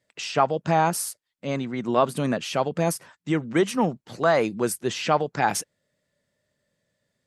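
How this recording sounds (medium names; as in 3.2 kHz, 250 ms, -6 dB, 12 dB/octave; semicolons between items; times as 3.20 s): noise floor -80 dBFS; spectral tilt -4.5 dB/octave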